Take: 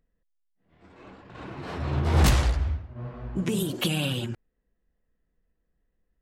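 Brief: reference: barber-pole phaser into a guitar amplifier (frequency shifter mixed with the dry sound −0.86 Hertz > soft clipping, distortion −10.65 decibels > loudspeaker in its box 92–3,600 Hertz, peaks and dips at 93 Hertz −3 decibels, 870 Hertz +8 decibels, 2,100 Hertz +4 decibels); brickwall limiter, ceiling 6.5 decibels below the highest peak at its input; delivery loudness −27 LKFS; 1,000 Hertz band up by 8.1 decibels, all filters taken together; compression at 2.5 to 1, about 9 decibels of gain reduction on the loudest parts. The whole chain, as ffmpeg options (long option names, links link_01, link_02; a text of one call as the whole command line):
ffmpeg -i in.wav -filter_complex "[0:a]equalizer=frequency=1000:width_type=o:gain=4.5,acompressor=threshold=-29dB:ratio=2.5,alimiter=limit=-23.5dB:level=0:latency=1,asplit=2[link_01][link_02];[link_02]afreqshift=-0.86[link_03];[link_01][link_03]amix=inputs=2:normalize=1,asoftclip=threshold=-35dB,highpass=92,equalizer=frequency=93:width_type=q:width=4:gain=-3,equalizer=frequency=870:width_type=q:width=4:gain=8,equalizer=frequency=2100:width_type=q:width=4:gain=4,lowpass=frequency=3600:width=0.5412,lowpass=frequency=3600:width=1.3066,volume=15dB" out.wav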